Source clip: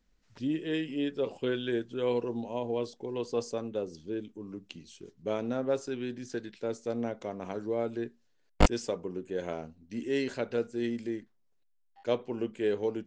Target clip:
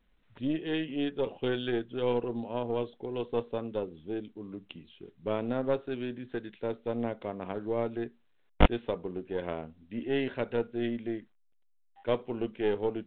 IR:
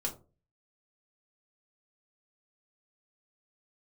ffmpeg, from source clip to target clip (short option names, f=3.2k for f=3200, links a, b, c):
-af "aeval=exprs='0.282*(cos(1*acos(clip(val(0)/0.282,-1,1)))-cos(1*PI/2))+0.0398*(cos(4*acos(clip(val(0)/0.282,-1,1)))-cos(4*PI/2))+0.0398*(cos(6*acos(clip(val(0)/0.282,-1,1)))-cos(6*PI/2))':c=same" -ar 8000 -c:a pcm_mulaw